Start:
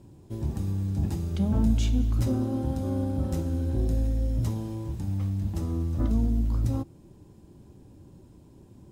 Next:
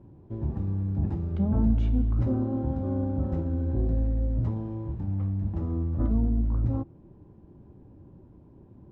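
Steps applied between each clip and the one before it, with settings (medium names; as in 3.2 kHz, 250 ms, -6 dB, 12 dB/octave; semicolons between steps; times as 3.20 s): low-pass 1.4 kHz 12 dB/octave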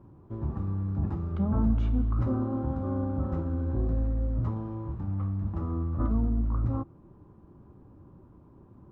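peaking EQ 1.2 kHz +13 dB 0.58 oct; trim -2 dB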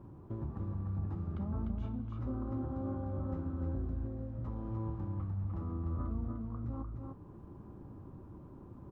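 compression 4:1, threshold -39 dBFS, peak gain reduction 16 dB; on a send: delay 299 ms -4 dB; on the sum: trim +1 dB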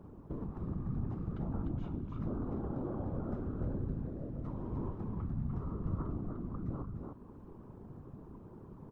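whisper effect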